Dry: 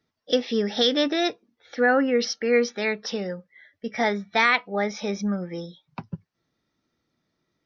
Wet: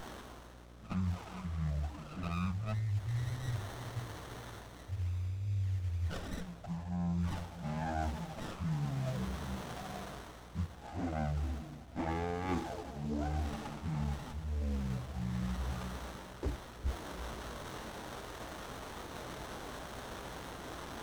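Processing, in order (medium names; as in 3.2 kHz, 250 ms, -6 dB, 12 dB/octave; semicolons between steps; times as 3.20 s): added noise white -44 dBFS; on a send at -16.5 dB: reverberation RT60 1.4 s, pre-delay 116 ms; on the sum: touch-sensitive flanger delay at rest 10.4 ms, full sweep at -16.5 dBFS; spectral selection erased 0.99–2.22 s, 330–4600 Hz; reverse; compression 12:1, threshold -39 dBFS, peak gain reduction 22 dB; reverse; wide varispeed 0.364×; mains buzz 60 Hz, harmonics 12, -61 dBFS -6 dB/octave; sliding maximum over 17 samples; trim +6 dB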